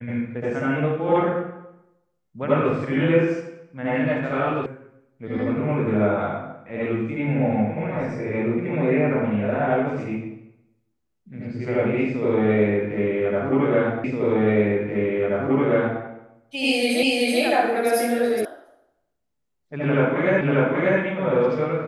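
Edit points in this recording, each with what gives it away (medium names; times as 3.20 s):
4.66 s: sound stops dead
14.04 s: repeat of the last 1.98 s
17.03 s: repeat of the last 0.38 s
18.45 s: sound stops dead
20.41 s: repeat of the last 0.59 s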